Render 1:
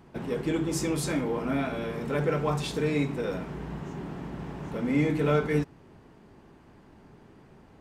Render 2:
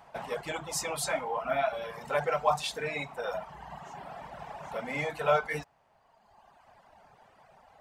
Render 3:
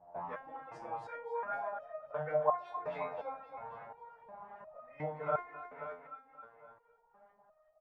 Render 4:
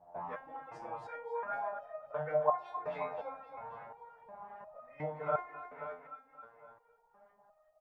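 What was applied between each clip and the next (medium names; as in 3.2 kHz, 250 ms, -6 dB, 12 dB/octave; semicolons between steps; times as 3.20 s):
reverb removal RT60 1.6 s; resonant low shelf 480 Hz -12 dB, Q 3; trim +2 dB
LFO low-pass saw up 2.6 Hz 590–1700 Hz; feedback delay 266 ms, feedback 57%, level -8 dB; resonator arpeggio 2.8 Hz 87–620 Hz; trim +1 dB
on a send at -8 dB: ladder band-pass 820 Hz, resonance 80% + reverberation RT60 1.1 s, pre-delay 3 ms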